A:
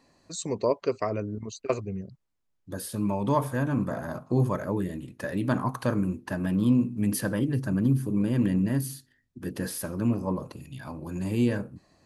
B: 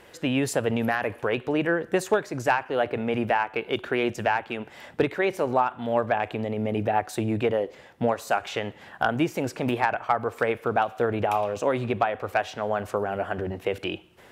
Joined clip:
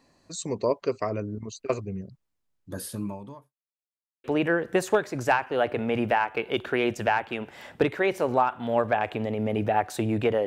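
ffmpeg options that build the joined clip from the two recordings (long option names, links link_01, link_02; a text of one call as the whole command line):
ffmpeg -i cue0.wav -i cue1.wav -filter_complex "[0:a]apad=whole_dur=10.46,atrim=end=10.46,asplit=2[link_01][link_02];[link_01]atrim=end=3.54,asetpts=PTS-STARTPTS,afade=type=out:start_time=2.89:duration=0.65:curve=qua[link_03];[link_02]atrim=start=3.54:end=4.24,asetpts=PTS-STARTPTS,volume=0[link_04];[1:a]atrim=start=1.43:end=7.65,asetpts=PTS-STARTPTS,afade=type=in:duration=0.004:curve=hsin[link_05];[link_03][link_04][link_05]concat=n=3:v=0:a=1" out.wav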